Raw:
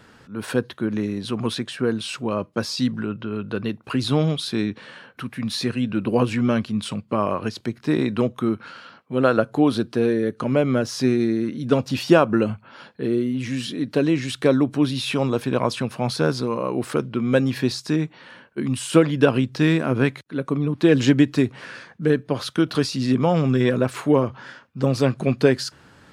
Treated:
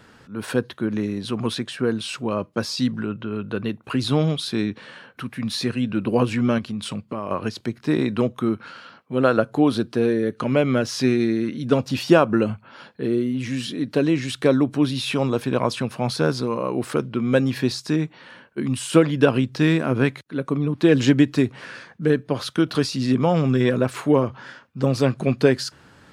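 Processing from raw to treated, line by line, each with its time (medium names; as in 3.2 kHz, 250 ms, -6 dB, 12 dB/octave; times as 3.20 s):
3.12–3.92 s: peaking EQ 5 kHz -8 dB 0.27 oct
6.58–7.31 s: compression, threshold -24 dBFS
10.31–11.64 s: peaking EQ 2.7 kHz +4.5 dB 1.6 oct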